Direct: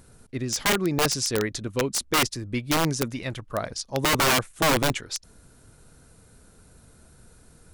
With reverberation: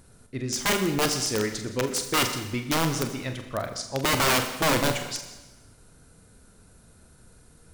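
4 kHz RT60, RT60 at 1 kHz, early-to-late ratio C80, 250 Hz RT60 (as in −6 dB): 1.1 s, 1.1 s, 10.0 dB, 1.1 s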